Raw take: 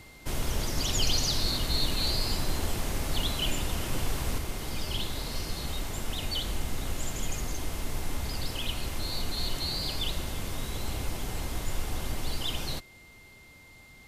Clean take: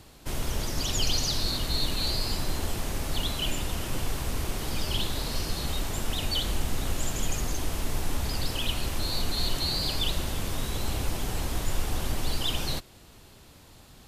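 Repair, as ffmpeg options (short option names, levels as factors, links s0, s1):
-af "bandreject=f=2100:w=30,asetnsamples=n=441:p=0,asendcmd='4.38 volume volume 3.5dB',volume=1"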